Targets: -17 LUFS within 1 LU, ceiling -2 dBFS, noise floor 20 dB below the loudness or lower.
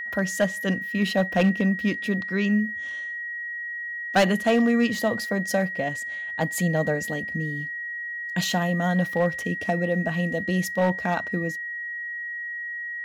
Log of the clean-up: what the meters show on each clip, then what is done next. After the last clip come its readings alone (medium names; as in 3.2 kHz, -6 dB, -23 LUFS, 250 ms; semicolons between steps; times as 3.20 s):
clipped samples 0.4%; clipping level -14.0 dBFS; steady tone 1.9 kHz; tone level -30 dBFS; loudness -25.5 LUFS; peak level -14.0 dBFS; loudness target -17.0 LUFS
-> clip repair -14 dBFS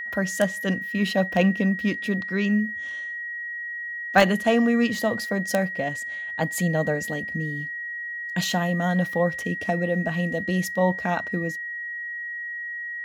clipped samples 0.0%; steady tone 1.9 kHz; tone level -30 dBFS
-> band-stop 1.9 kHz, Q 30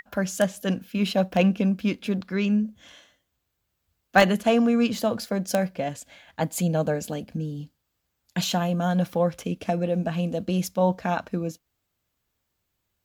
steady tone not found; loudness -25.0 LUFS; peak level -5.0 dBFS; loudness target -17.0 LUFS
-> trim +8 dB; peak limiter -2 dBFS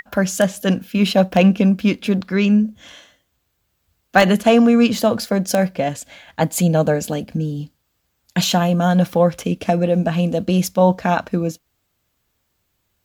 loudness -17.5 LUFS; peak level -2.0 dBFS; noise floor -70 dBFS